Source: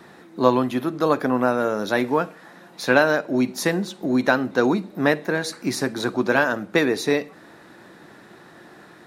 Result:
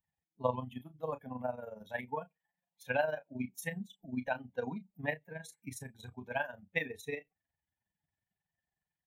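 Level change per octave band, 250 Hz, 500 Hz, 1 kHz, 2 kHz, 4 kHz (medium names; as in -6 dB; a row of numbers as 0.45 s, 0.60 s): -21.0 dB, -17.0 dB, -16.0 dB, -16.0 dB, -21.5 dB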